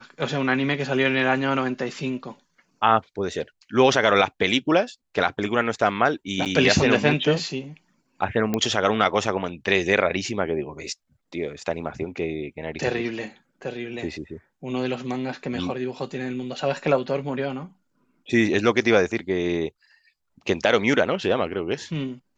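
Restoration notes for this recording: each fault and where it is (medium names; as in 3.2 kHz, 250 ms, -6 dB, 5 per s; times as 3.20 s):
6.45–6.46 s: dropout 8.3 ms
8.54 s: pop -10 dBFS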